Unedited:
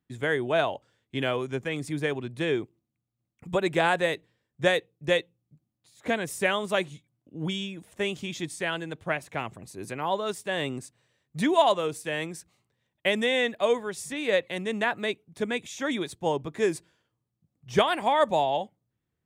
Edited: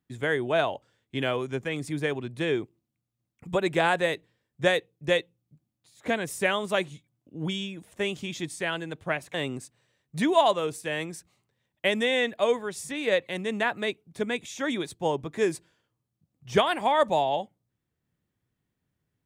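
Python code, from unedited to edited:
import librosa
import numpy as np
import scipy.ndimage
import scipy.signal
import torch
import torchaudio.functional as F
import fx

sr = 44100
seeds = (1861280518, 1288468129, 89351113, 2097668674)

y = fx.edit(x, sr, fx.cut(start_s=9.34, length_s=1.21), tone=tone)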